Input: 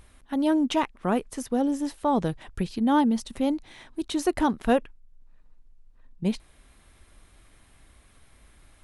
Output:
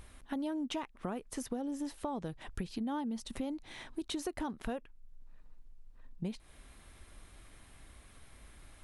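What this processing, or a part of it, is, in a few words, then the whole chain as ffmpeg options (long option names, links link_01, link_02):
serial compression, peaks first: -af "acompressor=threshold=-31dB:ratio=5,acompressor=threshold=-41dB:ratio=1.5"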